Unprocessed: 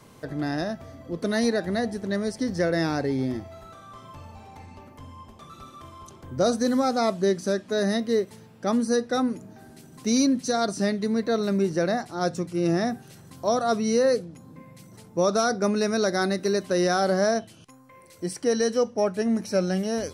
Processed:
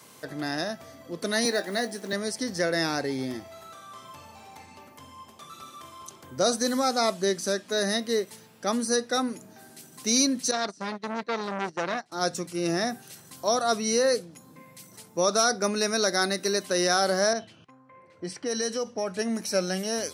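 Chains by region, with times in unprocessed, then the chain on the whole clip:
1.45–2.13 HPF 200 Hz 24 dB/oct + doubler 20 ms -11.5 dB + companded quantiser 8-bit
10.51–12.12 gate -28 dBFS, range -18 dB + air absorption 84 m + core saturation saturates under 1200 Hz
17.33–19.19 low-pass opened by the level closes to 1400 Hz, open at -19 dBFS + low shelf 95 Hz +11.5 dB + compressor 3:1, threshold -24 dBFS
whole clip: HPF 97 Hz; tilt +2.5 dB/oct

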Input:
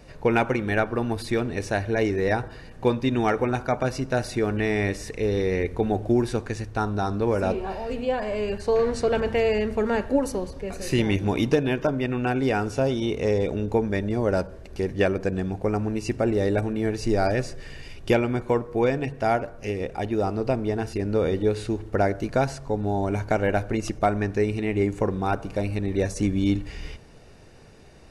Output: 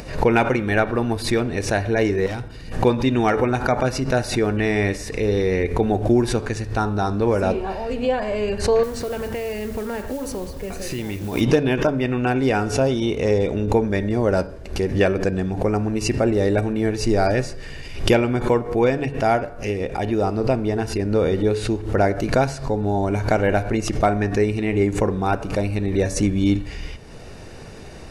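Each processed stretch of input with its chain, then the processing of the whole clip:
2.26–2.72 bell 800 Hz -9.5 dB 2.6 oct + notch 1700 Hz, Q 11 + hard clip -28.5 dBFS
8.83–11.41 compressor 5:1, threshold -28 dBFS + modulation noise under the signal 19 dB
whole clip: upward compressor, threshold -33 dBFS; de-hum 142.9 Hz, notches 37; backwards sustainer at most 110 dB/s; gain +4 dB

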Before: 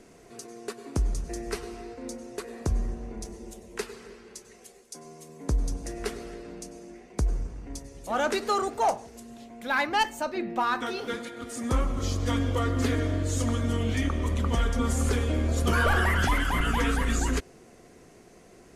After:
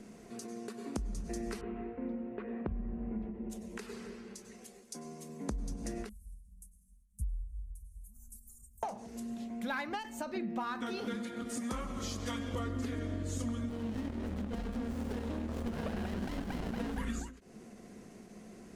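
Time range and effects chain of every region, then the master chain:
1.61–3.5 steep low-pass 2800 Hz + mismatched tape noise reduction decoder only
6.09–8.83 inverse Chebyshev band-stop 290–3700 Hz, stop band 60 dB + comb 4.6 ms, depth 70%
11.6–12.54 low shelf 440 Hz -10.5 dB + mismatched tape noise reduction encoder only
13.69–16.98 tone controls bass -8 dB, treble -1 dB + running maximum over 33 samples
whole clip: bell 210 Hz +14.5 dB 0.37 oct; compressor, threshold -31 dBFS; ending taper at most 110 dB/s; gain -2.5 dB

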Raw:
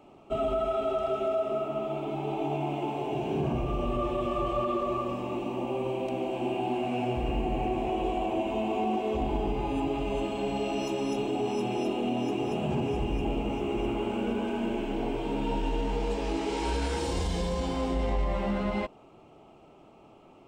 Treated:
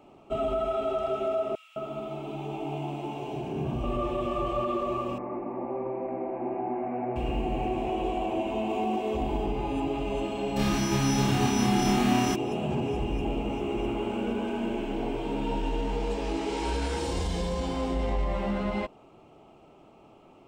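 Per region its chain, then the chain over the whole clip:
1.55–3.84 bell 560 Hz -4.5 dB 2.1 oct + bands offset in time highs, lows 0.21 s, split 2000 Hz
5.18–7.16 elliptic low-pass 2100 Hz + bell 83 Hz -9 dB 1.7 oct
8.69–9.46 high shelf 7200 Hz +5 dB + notch 1400 Hz, Q 18
10.56–12.34 spectral whitening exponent 0.3 + RIAA curve playback + flutter echo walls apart 5.1 m, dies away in 0.65 s
whole clip: dry

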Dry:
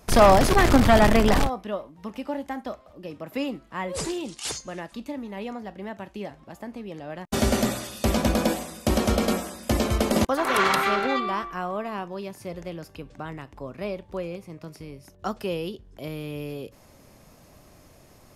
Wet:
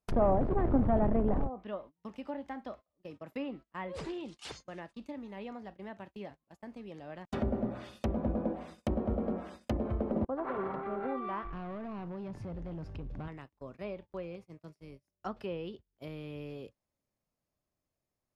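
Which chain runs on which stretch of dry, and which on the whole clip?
11.45–13.28 RIAA curve playback + compressor 5:1, threshold -33 dBFS + sample leveller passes 2
whole clip: treble ducked by the level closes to 680 Hz, closed at -19 dBFS; gate -39 dBFS, range -27 dB; dynamic EQ 6700 Hz, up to -7 dB, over -57 dBFS, Q 1.1; gain -9 dB

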